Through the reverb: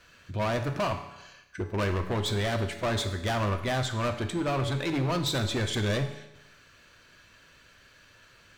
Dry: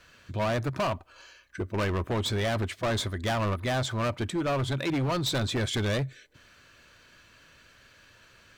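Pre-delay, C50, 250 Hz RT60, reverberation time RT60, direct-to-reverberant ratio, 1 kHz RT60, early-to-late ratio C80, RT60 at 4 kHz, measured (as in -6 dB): 7 ms, 9.5 dB, 0.95 s, 0.95 s, 6.0 dB, 0.95 s, 11.5 dB, 0.90 s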